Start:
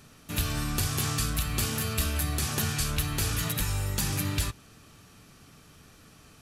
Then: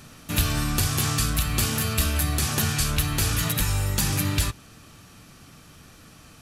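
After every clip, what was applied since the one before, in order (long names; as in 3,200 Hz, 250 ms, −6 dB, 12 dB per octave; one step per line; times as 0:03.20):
notch filter 420 Hz, Q 12
in parallel at −2 dB: speech leveller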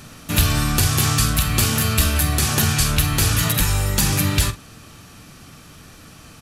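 double-tracking delay 46 ms −13 dB
level +5.5 dB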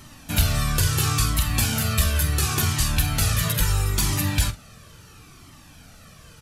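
flanger whose copies keep moving one way falling 0.73 Hz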